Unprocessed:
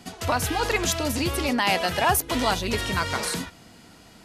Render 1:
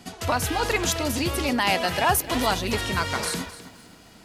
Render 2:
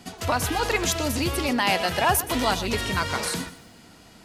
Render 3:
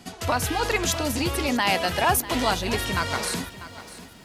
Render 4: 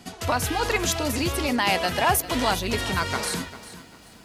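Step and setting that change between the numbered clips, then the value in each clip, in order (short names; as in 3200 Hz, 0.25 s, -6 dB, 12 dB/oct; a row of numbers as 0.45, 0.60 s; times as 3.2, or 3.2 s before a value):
lo-fi delay, time: 0.261, 0.122, 0.645, 0.397 s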